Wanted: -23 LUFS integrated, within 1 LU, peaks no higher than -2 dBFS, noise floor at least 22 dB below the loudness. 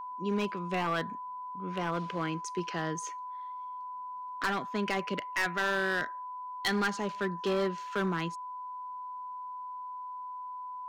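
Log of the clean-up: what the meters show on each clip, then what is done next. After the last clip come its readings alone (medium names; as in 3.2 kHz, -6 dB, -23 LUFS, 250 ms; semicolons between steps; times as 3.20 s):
clipped samples 1.2%; clipping level -24.0 dBFS; steady tone 1 kHz; tone level -38 dBFS; loudness -34.0 LUFS; peak level -24.0 dBFS; loudness target -23.0 LUFS
-> clip repair -24 dBFS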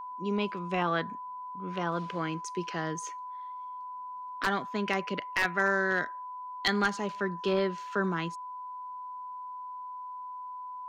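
clipped samples 0.0%; steady tone 1 kHz; tone level -38 dBFS
-> band-stop 1 kHz, Q 30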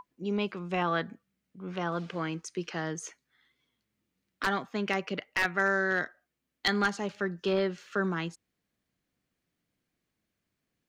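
steady tone not found; loudness -31.5 LUFS; peak level -14.5 dBFS; loudness target -23.0 LUFS
-> trim +8.5 dB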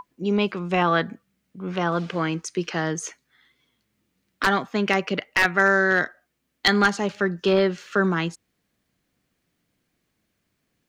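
loudness -23.0 LUFS; peak level -6.0 dBFS; noise floor -75 dBFS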